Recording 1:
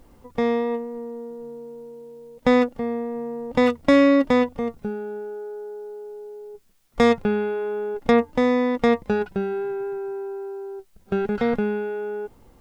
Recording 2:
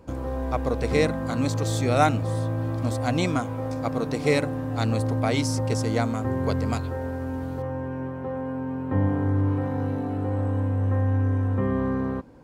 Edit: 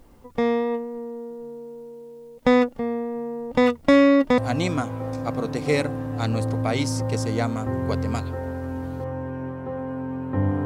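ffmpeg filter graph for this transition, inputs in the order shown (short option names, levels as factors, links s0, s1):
-filter_complex "[0:a]apad=whole_dur=10.65,atrim=end=10.65,atrim=end=4.382[s0];[1:a]atrim=start=2.958:end=9.23[s1];[s0][s1]acrossfade=d=0.004:c1=hsin:c2=hsin"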